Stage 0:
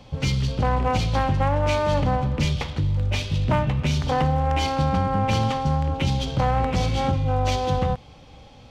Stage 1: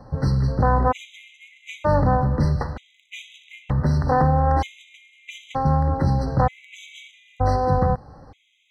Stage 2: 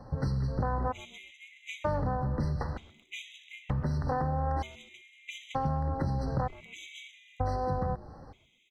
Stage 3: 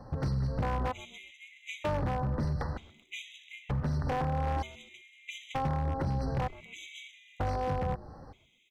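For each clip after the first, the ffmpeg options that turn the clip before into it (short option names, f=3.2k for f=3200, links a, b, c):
-af "highshelf=f=2k:t=q:w=1.5:g=-8.5,afftfilt=real='re*gt(sin(2*PI*0.54*pts/sr)*(1-2*mod(floor(b*sr/1024/2000),2)),0)':imag='im*gt(sin(2*PI*0.54*pts/sr)*(1-2*mod(floor(b*sr/1024/2000),2)),0)':win_size=1024:overlap=0.75,volume=3dB"
-filter_complex "[0:a]acompressor=threshold=-23dB:ratio=6,asplit=4[a][b][c][d];[b]adelay=129,afreqshift=-150,volume=-20dB[e];[c]adelay=258,afreqshift=-300,volume=-29.9dB[f];[d]adelay=387,afreqshift=-450,volume=-39.8dB[g];[a][e][f][g]amix=inputs=4:normalize=0,volume=-4dB"
-af "aeval=exprs='0.0631*(abs(mod(val(0)/0.0631+3,4)-2)-1)':c=same"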